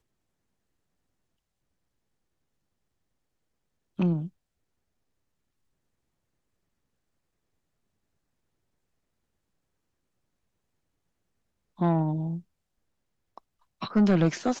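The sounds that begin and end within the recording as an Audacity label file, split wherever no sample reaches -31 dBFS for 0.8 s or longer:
3.990000	4.260000	sound
11.810000	12.380000	sound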